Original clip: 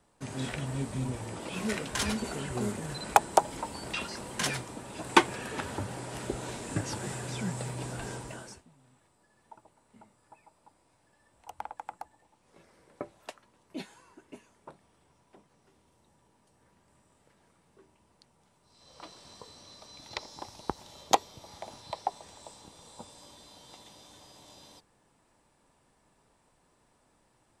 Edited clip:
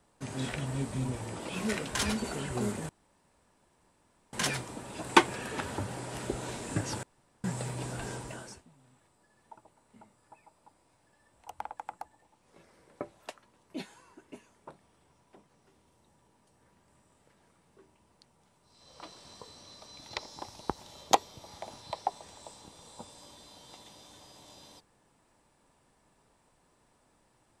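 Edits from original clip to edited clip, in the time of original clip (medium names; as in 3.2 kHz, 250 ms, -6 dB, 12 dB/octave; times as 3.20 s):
2.89–4.33 s: room tone
7.03–7.44 s: room tone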